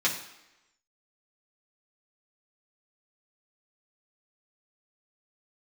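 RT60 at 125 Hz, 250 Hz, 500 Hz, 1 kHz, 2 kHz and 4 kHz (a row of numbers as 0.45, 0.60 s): 0.70, 0.90, 0.95, 1.0, 0.95, 0.85 s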